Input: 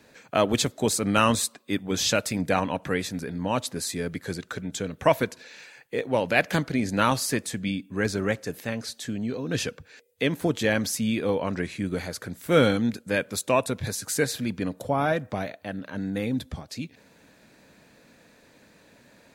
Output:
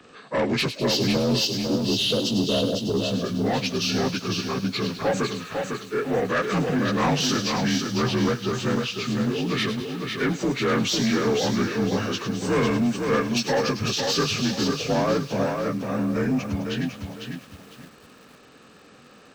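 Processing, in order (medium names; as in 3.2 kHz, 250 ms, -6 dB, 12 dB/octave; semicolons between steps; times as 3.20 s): frequency axis rescaled in octaves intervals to 84%; spectral selection erased 0.80–3.10 s, 690–2600 Hz; in parallel at +3 dB: peak limiter -21 dBFS, peak gain reduction 11 dB; on the sum: saturation -17.5 dBFS, distortion -13 dB; on a send: feedback echo behind a high-pass 103 ms, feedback 63%, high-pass 3.4 kHz, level -7 dB; on the sum: bit-crushed delay 502 ms, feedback 35%, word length 8-bit, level -4.5 dB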